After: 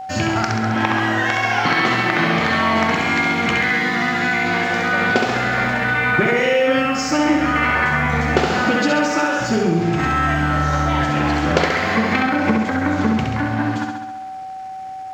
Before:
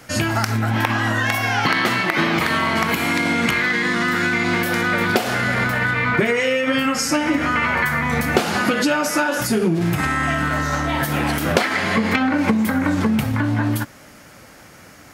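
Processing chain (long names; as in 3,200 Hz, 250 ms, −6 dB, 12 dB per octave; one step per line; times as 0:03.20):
Butterworth low-pass 7,600 Hz 96 dB per octave
high-shelf EQ 5,100 Hz −6.5 dB
dead-zone distortion −47.5 dBFS
flutter between parallel walls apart 11.5 metres, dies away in 1 s
steady tone 760 Hz −28 dBFS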